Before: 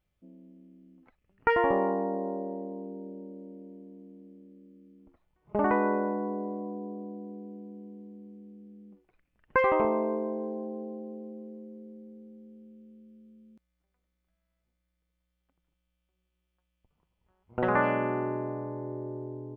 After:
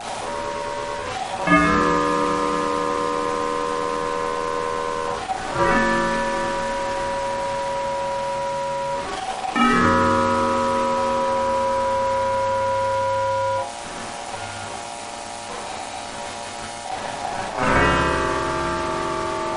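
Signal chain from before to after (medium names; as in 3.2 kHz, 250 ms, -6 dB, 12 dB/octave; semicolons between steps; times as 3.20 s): jump at every zero crossing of -27 dBFS; Schroeder reverb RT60 0.34 s, combs from 32 ms, DRR -5 dB; ring modulator 760 Hz; reverse; upward compressor, threshold -28 dBFS; reverse; trim +3 dB; MP3 40 kbps 32 kHz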